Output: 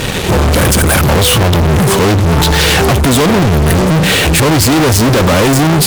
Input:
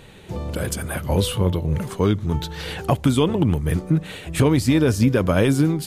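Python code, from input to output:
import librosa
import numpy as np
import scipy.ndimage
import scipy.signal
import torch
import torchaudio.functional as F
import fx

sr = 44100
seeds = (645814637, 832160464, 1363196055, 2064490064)

y = fx.fuzz(x, sr, gain_db=45.0, gate_db=-47.0)
y = y * librosa.db_to_amplitude(5.0)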